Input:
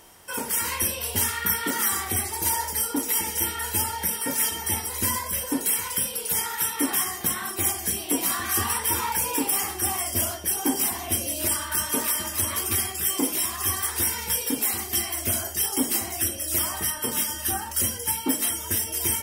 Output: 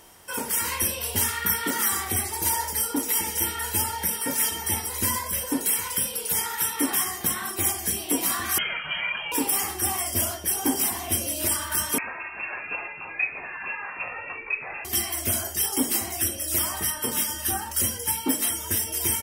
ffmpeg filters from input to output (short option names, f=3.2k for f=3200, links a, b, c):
-filter_complex "[0:a]asettb=1/sr,asplit=3[a][b][c];[a]atrim=end=8.584[d];[b]atrim=start=8.58:end=9.32,asetpts=PTS-STARTPTS,afade=t=in:d=0.004:c=qsin,afade=t=out:st=0.736:d=0.004:c=qsin,lowpass=f=2.8k:t=q:w=0.5098,lowpass=f=2.8k:t=q:w=0.6013,lowpass=f=2.8k:t=q:w=0.9,lowpass=f=2.8k:t=q:w=2.563,afreqshift=-3300[e];[c]atrim=start=9.316[f];[d][e]acrossfade=d=0.004:c1=hsin:c2=qsin[g];[g][f]acrossfade=d=0.004:c1=qsin:c2=hsin,asplit=2[h][i];[i]afade=t=in:st=9.99:d=0.01,afade=t=out:st=10.49:d=0.01,aecho=0:1:490|980|1470|1960|2450|2940|3430|3920|4410:0.177828|0.12448|0.0871357|0.060995|0.0426965|0.0298875|0.0209213|0.0146449|0.0102514[j];[h][j]amix=inputs=2:normalize=0,asettb=1/sr,asplit=3[k][l][m];[k]atrim=end=11.984[n];[l]atrim=start=11.98:end=14.85,asetpts=PTS-STARTPTS,afade=t=in:d=0.004:c=qsin,afade=t=out:st=2.866:d=0.004:c=qsin,lowpass=f=2.4k:t=q:w=0.5098,lowpass=f=2.4k:t=q:w=0.6013,lowpass=f=2.4k:t=q:w=0.9,lowpass=f=2.4k:t=q:w=2.563,afreqshift=-2800[o];[m]atrim=start=14.846[p];[n][o]acrossfade=d=0.004:c1=hsin:c2=qsin[q];[q][p]acrossfade=d=0.004:c1=qsin:c2=hsin"